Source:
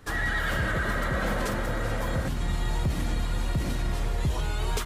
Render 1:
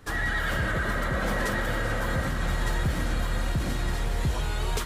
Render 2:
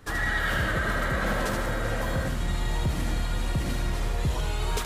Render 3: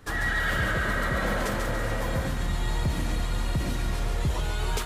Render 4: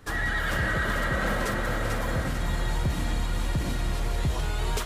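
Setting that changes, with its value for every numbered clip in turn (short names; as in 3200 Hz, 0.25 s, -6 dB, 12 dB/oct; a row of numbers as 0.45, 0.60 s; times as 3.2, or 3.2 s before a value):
thinning echo, time: 1210, 77, 141, 444 ms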